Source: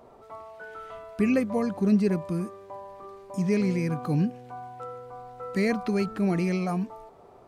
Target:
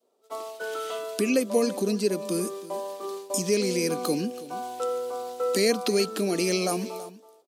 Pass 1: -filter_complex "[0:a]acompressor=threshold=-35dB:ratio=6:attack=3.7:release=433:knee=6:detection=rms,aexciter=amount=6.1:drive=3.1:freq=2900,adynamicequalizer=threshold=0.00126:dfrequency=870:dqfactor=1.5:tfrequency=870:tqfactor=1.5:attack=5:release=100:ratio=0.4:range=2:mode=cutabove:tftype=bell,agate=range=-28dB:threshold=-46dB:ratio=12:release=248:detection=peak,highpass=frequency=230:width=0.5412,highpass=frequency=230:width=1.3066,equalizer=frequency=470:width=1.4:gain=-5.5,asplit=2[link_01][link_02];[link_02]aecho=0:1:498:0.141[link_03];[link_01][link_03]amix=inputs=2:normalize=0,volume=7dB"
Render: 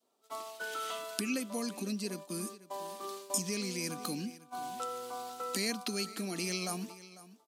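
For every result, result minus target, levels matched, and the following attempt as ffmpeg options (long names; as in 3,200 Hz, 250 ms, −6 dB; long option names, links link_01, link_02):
echo 171 ms late; downward compressor: peak gain reduction +6.5 dB; 500 Hz band −6.0 dB
-filter_complex "[0:a]acompressor=threshold=-35dB:ratio=6:attack=3.7:release=433:knee=6:detection=rms,aexciter=amount=6.1:drive=3.1:freq=2900,adynamicequalizer=threshold=0.00126:dfrequency=870:dqfactor=1.5:tfrequency=870:tqfactor=1.5:attack=5:release=100:ratio=0.4:range=2:mode=cutabove:tftype=bell,agate=range=-28dB:threshold=-46dB:ratio=12:release=248:detection=peak,highpass=frequency=230:width=0.5412,highpass=frequency=230:width=1.3066,equalizer=frequency=470:width=1.4:gain=-5.5,asplit=2[link_01][link_02];[link_02]aecho=0:1:327:0.141[link_03];[link_01][link_03]amix=inputs=2:normalize=0,volume=7dB"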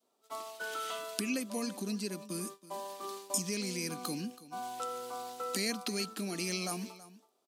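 downward compressor: peak gain reduction +6.5 dB; 500 Hz band −6.0 dB
-filter_complex "[0:a]acompressor=threshold=-27dB:ratio=6:attack=3.7:release=433:knee=6:detection=rms,aexciter=amount=6.1:drive=3.1:freq=2900,adynamicequalizer=threshold=0.00126:dfrequency=870:dqfactor=1.5:tfrequency=870:tqfactor=1.5:attack=5:release=100:ratio=0.4:range=2:mode=cutabove:tftype=bell,agate=range=-28dB:threshold=-46dB:ratio=12:release=248:detection=peak,highpass=frequency=230:width=0.5412,highpass=frequency=230:width=1.3066,equalizer=frequency=470:width=1.4:gain=-5.5,asplit=2[link_01][link_02];[link_02]aecho=0:1:327:0.141[link_03];[link_01][link_03]amix=inputs=2:normalize=0,volume=7dB"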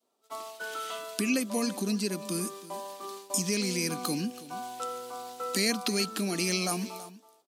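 500 Hz band −6.5 dB
-filter_complex "[0:a]acompressor=threshold=-27dB:ratio=6:attack=3.7:release=433:knee=6:detection=rms,aexciter=amount=6.1:drive=3.1:freq=2900,adynamicequalizer=threshold=0.00126:dfrequency=870:dqfactor=1.5:tfrequency=870:tqfactor=1.5:attack=5:release=100:ratio=0.4:range=2:mode=cutabove:tftype=bell,agate=range=-28dB:threshold=-46dB:ratio=12:release=248:detection=peak,highpass=frequency=230:width=0.5412,highpass=frequency=230:width=1.3066,equalizer=frequency=470:width=1.4:gain=6.5,asplit=2[link_01][link_02];[link_02]aecho=0:1:327:0.141[link_03];[link_01][link_03]amix=inputs=2:normalize=0,volume=7dB"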